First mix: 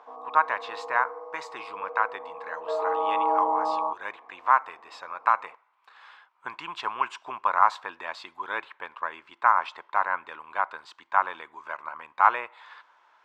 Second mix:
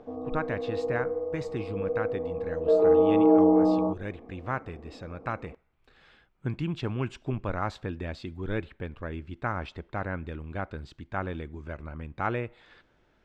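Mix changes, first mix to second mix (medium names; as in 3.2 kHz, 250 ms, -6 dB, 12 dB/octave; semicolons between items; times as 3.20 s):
speech -4.0 dB; master: remove resonant high-pass 1 kHz, resonance Q 6.1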